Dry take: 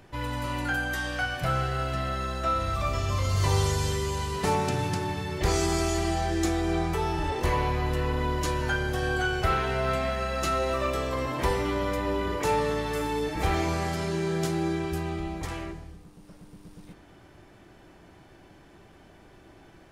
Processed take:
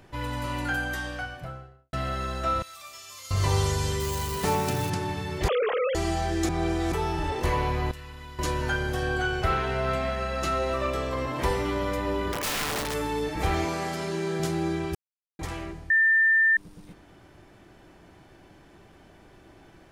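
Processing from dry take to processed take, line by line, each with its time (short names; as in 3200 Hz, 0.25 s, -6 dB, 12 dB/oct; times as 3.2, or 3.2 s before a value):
0.77–1.93 studio fade out
2.62–3.31 differentiator
4–4.9 switching spikes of -28.5 dBFS
5.48–5.95 sine-wave speech
6.49–6.92 reverse
7.91–8.39 passive tone stack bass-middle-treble 5-5-5
9.03–11.36 high shelf 6500 Hz -5.5 dB
12.32–12.94 wrapped overs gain 23.5 dB
13.65–14.4 HPF 170 Hz
14.95–15.39 mute
15.9–16.57 bleep 1790 Hz -17 dBFS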